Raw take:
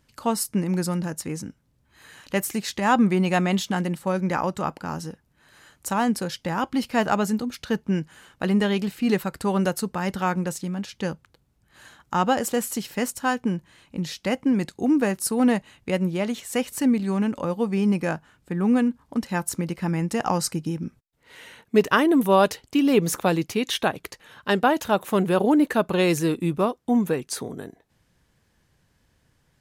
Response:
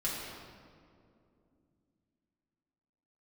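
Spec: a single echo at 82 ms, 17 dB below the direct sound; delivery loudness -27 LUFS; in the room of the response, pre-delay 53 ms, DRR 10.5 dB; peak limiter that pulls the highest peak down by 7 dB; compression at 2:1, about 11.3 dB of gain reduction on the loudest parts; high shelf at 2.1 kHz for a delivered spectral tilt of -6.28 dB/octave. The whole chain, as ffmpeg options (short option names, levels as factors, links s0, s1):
-filter_complex "[0:a]highshelf=f=2100:g=-7.5,acompressor=threshold=0.0178:ratio=2,alimiter=level_in=1.06:limit=0.0631:level=0:latency=1,volume=0.944,aecho=1:1:82:0.141,asplit=2[s0][s1];[1:a]atrim=start_sample=2205,adelay=53[s2];[s1][s2]afir=irnorm=-1:irlink=0,volume=0.168[s3];[s0][s3]amix=inputs=2:normalize=0,volume=2.37"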